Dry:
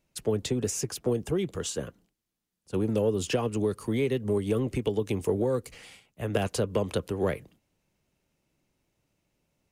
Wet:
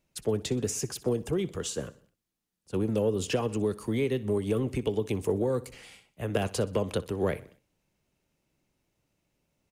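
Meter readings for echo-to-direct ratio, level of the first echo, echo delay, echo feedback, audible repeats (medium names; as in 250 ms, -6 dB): -18.0 dB, -19.0 dB, 62 ms, 49%, 3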